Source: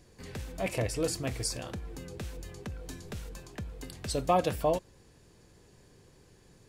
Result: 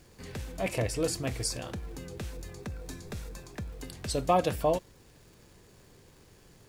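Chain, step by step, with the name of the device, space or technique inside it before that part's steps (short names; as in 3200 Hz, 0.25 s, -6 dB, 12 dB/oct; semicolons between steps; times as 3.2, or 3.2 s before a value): vinyl LP (crackle 120/s -50 dBFS; pink noise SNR 31 dB); 2.32–3.7 notch 3000 Hz, Q 9; gain +1 dB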